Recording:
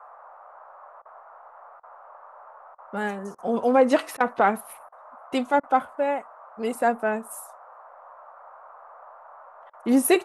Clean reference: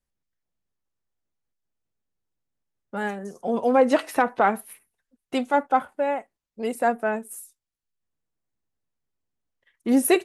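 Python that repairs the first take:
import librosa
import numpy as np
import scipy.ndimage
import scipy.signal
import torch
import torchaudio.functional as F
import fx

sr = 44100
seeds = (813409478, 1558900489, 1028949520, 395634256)

y = fx.fix_interpolate(x, sr, at_s=(1.02, 1.8, 2.75, 3.35, 4.17, 4.89, 5.6, 9.7), length_ms=32.0)
y = fx.noise_reduce(y, sr, print_start_s=1.34, print_end_s=1.84, reduce_db=30.0)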